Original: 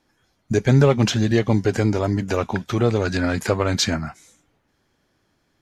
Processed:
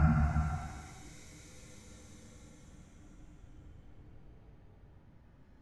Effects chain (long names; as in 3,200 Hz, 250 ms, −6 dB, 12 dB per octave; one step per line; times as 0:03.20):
high-shelf EQ 6,200 Hz +4.5 dB
extreme stretch with random phases 10×, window 0.25 s, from 0:04.11
RIAA equalisation playback